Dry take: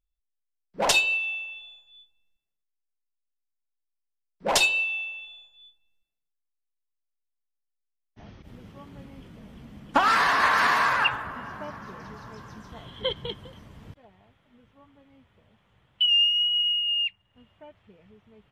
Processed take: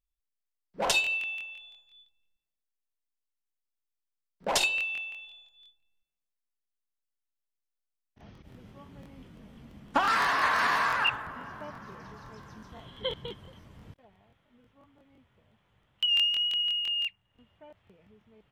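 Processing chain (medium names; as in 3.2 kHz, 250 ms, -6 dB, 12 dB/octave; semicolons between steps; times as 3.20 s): crackling interface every 0.17 s, samples 1024, repeat, from 0.68 s; trim -4.5 dB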